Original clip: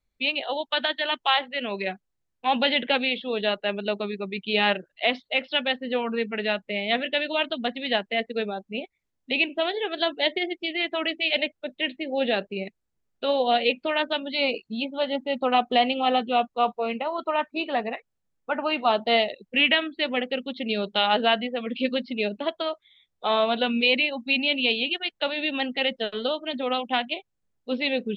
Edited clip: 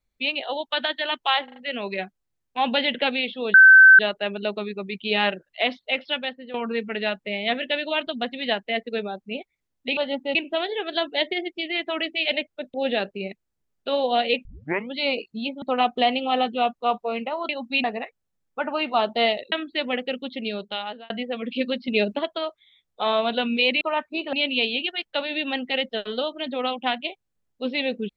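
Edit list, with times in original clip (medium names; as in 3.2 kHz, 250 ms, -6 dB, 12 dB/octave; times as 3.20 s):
1.44 s: stutter 0.04 s, 4 plays
3.42 s: add tone 1.54 kHz -6.5 dBFS 0.45 s
5.44–5.97 s: fade out, to -14 dB
11.79–12.10 s: delete
13.81 s: tape start 0.48 s
14.98–15.36 s: move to 9.40 s
17.23–17.75 s: swap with 24.05–24.40 s
19.43–19.76 s: delete
20.53–21.34 s: fade out
22.12–22.43 s: gain +5 dB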